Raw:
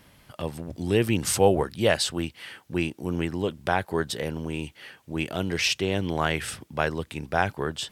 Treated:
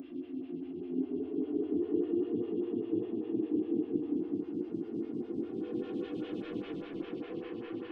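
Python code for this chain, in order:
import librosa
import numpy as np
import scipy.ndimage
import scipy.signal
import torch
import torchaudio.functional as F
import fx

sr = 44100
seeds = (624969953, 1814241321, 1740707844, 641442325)

y = fx.law_mismatch(x, sr, coded='mu')
y = scipy.signal.sosfilt(scipy.signal.cheby1(2, 1.0, 3300.0, 'lowpass', fs=sr, output='sos'), y)
y = fx.peak_eq(y, sr, hz=300.0, db=4.5, octaves=0.77)
y = 10.0 ** (-21.5 / 20.0) * np.tanh(y / 10.0 ** (-21.5 / 20.0))
y = fx.filter_lfo_bandpass(y, sr, shape='square', hz=0.69, low_hz=290.0, high_hz=3000.0, q=3.0)
y = y + 10.0 ** (-12.0 / 20.0) * np.pad(y, (int(619 * sr / 1000.0), 0))[:len(y)]
y = fx.room_shoebox(y, sr, seeds[0], volume_m3=3500.0, walls='mixed', distance_m=3.3)
y = fx.paulstretch(y, sr, seeds[1], factor=9.0, window_s=0.25, from_s=0.76)
y = fx.stagger_phaser(y, sr, hz=5.0)
y = y * 10.0 ** (-5.5 / 20.0)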